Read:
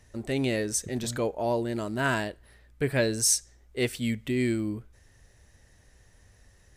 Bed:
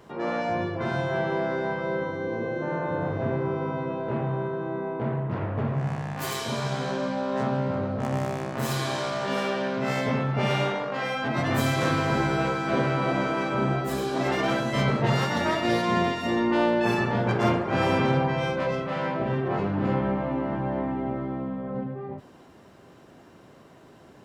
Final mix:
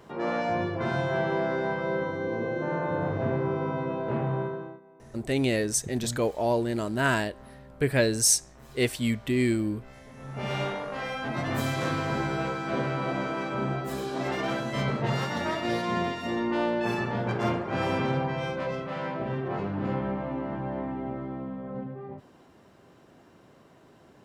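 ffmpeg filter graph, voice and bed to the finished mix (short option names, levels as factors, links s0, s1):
-filter_complex "[0:a]adelay=5000,volume=1.26[s0];[1:a]volume=8.41,afade=t=out:st=4.4:d=0.4:silence=0.0707946,afade=t=in:st=10.16:d=0.45:silence=0.112202[s1];[s0][s1]amix=inputs=2:normalize=0"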